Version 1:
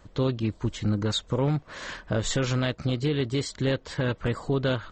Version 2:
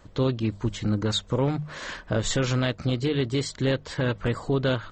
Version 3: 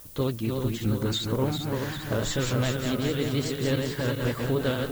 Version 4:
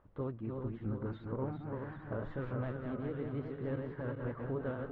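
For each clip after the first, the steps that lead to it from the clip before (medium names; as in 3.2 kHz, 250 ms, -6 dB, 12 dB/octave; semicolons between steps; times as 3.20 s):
hum notches 50/100/150/200 Hz; trim +1.5 dB
backward echo that repeats 198 ms, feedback 72%, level -4 dB; added noise violet -43 dBFS; vibrato 11 Hz 52 cents; trim -3.5 dB
four-pole ladder low-pass 1.8 kHz, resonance 20%; trim -6.5 dB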